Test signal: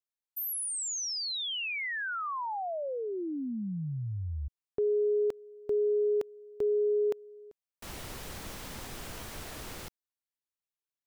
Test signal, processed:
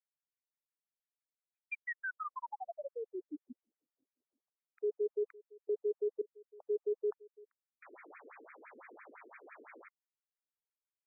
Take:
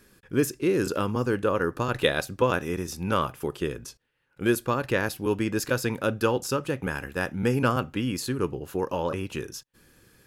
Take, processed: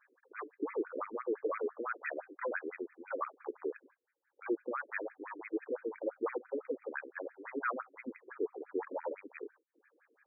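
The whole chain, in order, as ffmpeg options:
-af "asoftclip=type=hard:threshold=-22dB,aemphasis=mode=production:type=75kf,afftfilt=real='re*between(b*sr/1024,350*pow(1800/350,0.5+0.5*sin(2*PI*5.9*pts/sr))/1.41,350*pow(1800/350,0.5+0.5*sin(2*PI*5.9*pts/sr))*1.41)':imag='im*between(b*sr/1024,350*pow(1800/350,0.5+0.5*sin(2*PI*5.9*pts/sr))/1.41,350*pow(1800/350,0.5+0.5*sin(2*PI*5.9*pts/sr))*1.41)':win_size=1024:overlap=0.75,volume=-4dB"

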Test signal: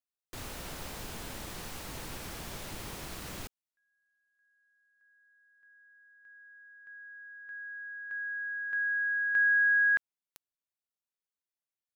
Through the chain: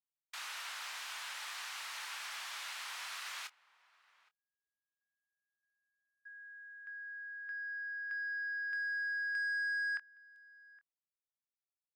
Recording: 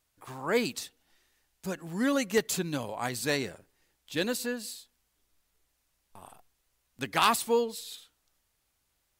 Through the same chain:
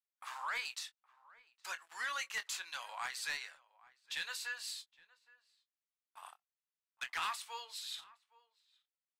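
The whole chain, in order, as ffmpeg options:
-filter_complex "[0:a]highpass=f=990:w=0.5412,highpass=f=990:w=1.3066,aemphasis=mode=reproduction:type=riaa,agate=range=-29dB:threshold=-60dB:ratio=16:release=75:detection=peak,tiltshelf=f=1.3k:g=-6.5,acompressor=threshold=-41dB:ratio=2.5:attack=5.4:release=968:knee=6:detection=peak,asoftclip=type=tanh:threshold=-34.5dB,asplit=2[a][b];[b]adelay=24,volume=-11dB[c];[a][c]amix=inputs=2:normalize=0,asplit=2[d][e];[e]adelay=816.3,volume=-21dB,highshelf=f=4k:g=-18.4[f];[d][f]amix=inputs=2:normalize=0,volume=5.5dB" -ar 48000 -c:a libmp3lame -b:a 112k

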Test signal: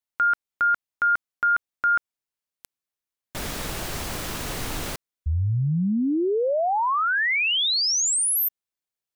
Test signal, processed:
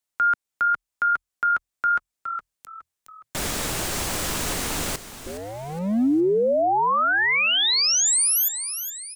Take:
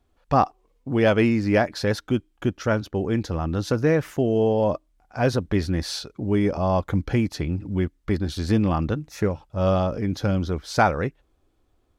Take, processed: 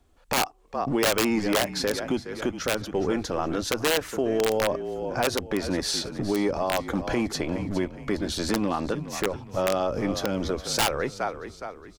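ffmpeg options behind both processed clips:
-filter_complex "[0:a]equalizer=f=7.9k:w=1.3:g=5,acrossover=split=200[a][b];[a]aeval=exprs='0.0224*(abs(mod(val(0)/0.0224+3,4)-2)-1)':c=same[c];[c][b]amix=inputs=2:normalize=0,asplit=5[d][e][f][g][h];[e]adelay=415,afreqshift=-42,volume=-14dB[i];[f]adelay=830,afreqshift=-84,volume=-22dB[j];[g]adelay=1245,afreqshift=-126,volume=-29.9dB[k];[h]adelay=1660,afreqshift=-168,volume=-37.9dB[l];[d][i][j][k][l]amix=inputs=5:normalize=0,aeval=exprs='(mod(4.22*val(0)+1,2)-1)/4.22':c=same,alimiter=limit=-19.5dB:level=0:latency=1:release=259,volume=4dB"

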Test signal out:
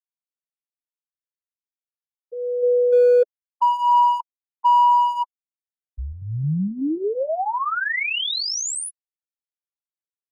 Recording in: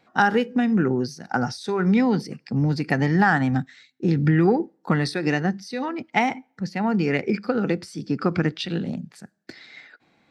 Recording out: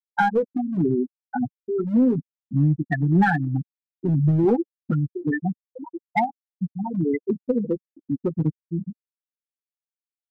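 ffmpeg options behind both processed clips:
-filter_complex "[0:a]afftfilt=real='re*gte(hypot(re,im),0.447)':imag='im*gte(hypot(re,im),0.447)':win_size=1024:overlap=0.75,asplit=2[a][b];[b]volume=17dB,asoftclip=hard,volume=-17dB,volume=-4dB[c];[a][c]amix=inputs=2:normalize=0,flanger=delay=5.7:depth=2.6:regen=-9:speed=0.32:shape=sinusoidal"

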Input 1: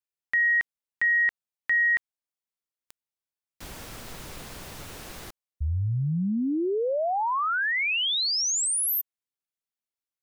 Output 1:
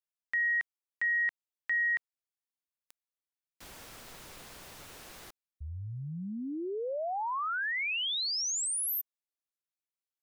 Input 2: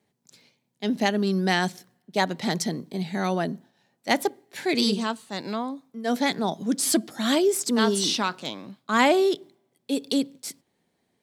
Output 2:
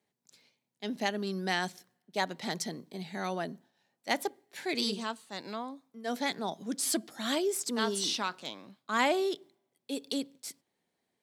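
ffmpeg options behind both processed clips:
-af "lowshelf=f=300:g=-7.5,volume=-6.5dB"

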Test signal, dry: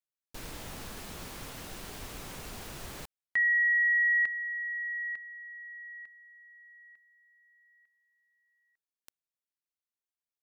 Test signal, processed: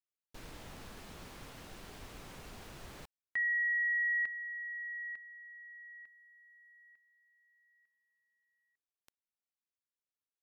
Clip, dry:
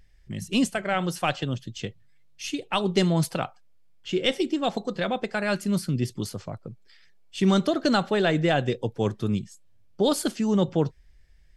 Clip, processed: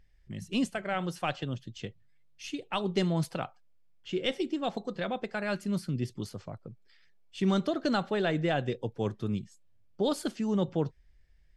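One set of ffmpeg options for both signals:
-af "highshelf=f=6.4k:g=-8,volume=-6dB"

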